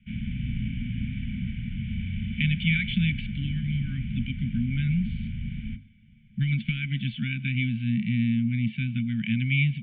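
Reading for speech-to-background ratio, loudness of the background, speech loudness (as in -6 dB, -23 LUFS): 6.0 dB, -33.5 LUFS, -27.5 LUFS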